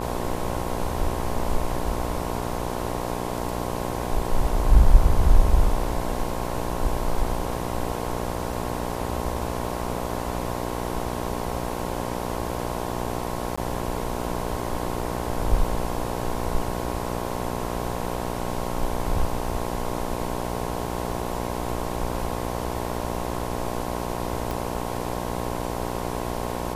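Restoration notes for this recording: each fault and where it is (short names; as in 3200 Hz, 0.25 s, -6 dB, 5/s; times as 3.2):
buzz 60 Hz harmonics 18 -30 dBFS
13.56–13.57 gap 15 ms
24.51 pop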